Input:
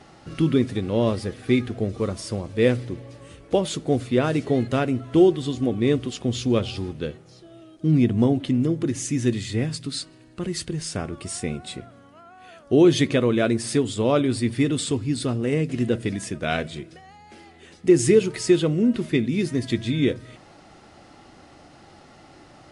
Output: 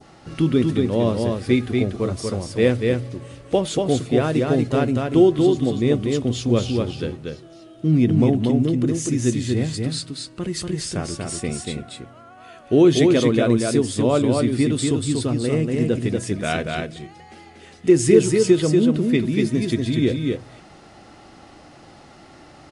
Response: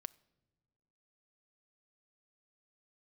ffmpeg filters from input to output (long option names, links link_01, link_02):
-filter_complex "[0:a]adynamicequalizer=threshold=0.01:dfrequency=2200:dqfactor=0.75:tfrequency=2200:tqfactor=0.75:attack=5:release=100:ratio=0.375:range=2.5:mode=cutabove:tftype=bell,asplit=2[link_01][link_02];[link_02]aecho=0:1:238:0.668[link_03];[link_01][link_03]amix=inputs=2:normalize=0,volume=1.5dB"